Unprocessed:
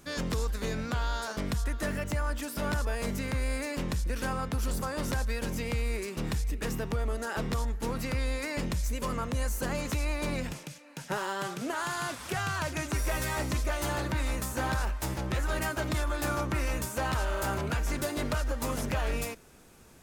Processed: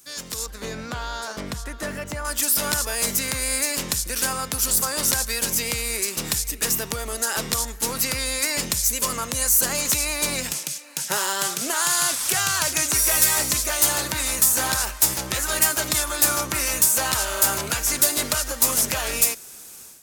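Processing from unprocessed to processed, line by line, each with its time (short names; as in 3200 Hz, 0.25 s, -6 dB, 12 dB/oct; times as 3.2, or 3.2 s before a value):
0.46–2.25 LPF 1300 Hz 6 dB/oct
whole clip: tone controls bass 0 dB, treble +9 dB; AGC gain up to 12 dB; tilt +2.5 dB/oct; gain -6 dB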